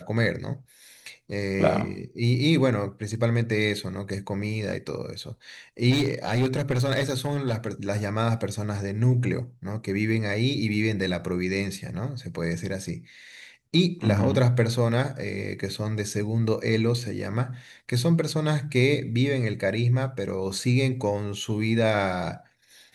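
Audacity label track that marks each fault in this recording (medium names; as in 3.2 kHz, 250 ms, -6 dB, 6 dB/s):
5.900000	7.680000	clipped -18.5 dBFS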